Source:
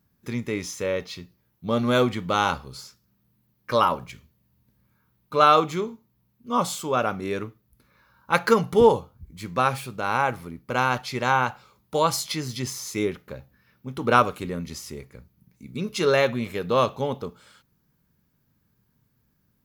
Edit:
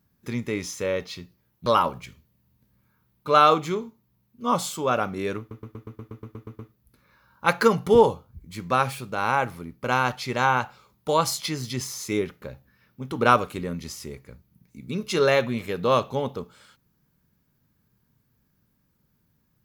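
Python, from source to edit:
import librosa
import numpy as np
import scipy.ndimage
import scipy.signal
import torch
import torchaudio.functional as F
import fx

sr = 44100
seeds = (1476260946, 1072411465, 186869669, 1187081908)

y = fx.edit(x, sr, fx.cut(start_s=1.66, length_s=2.06),
    fx.stutter(start_s=7.45, slice_s=0.12, count=11), tone=tone)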